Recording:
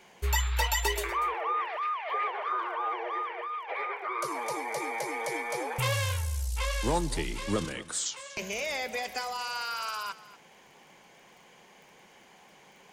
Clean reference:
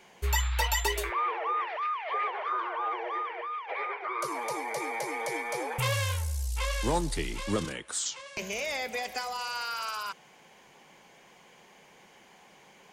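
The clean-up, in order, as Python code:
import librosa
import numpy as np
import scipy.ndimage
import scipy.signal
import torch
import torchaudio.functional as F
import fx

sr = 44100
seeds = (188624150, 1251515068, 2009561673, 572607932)

y = fx.fix_declick_ar(x, sr, threshold=6.5)
y = fx.fix_echo_inverse(y, sr, delay_ms=240, level_db=-17.5)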